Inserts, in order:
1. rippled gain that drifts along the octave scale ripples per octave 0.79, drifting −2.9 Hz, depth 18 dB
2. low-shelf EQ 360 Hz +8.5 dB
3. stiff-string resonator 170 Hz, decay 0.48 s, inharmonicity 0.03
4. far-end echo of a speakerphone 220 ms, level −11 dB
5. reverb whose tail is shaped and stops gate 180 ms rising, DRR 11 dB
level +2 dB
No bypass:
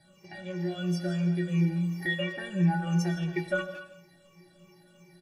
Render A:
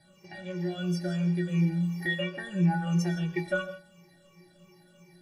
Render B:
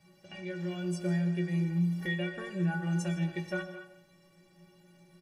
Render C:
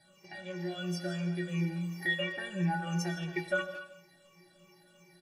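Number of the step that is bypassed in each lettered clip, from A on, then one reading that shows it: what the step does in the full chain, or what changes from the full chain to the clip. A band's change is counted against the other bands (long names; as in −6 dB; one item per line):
4, echo-to-direct ratio −9.0 dB to −11.0 dB
1, change in crest factor −2.0 dB
2, 125 Hz band −6.0 dB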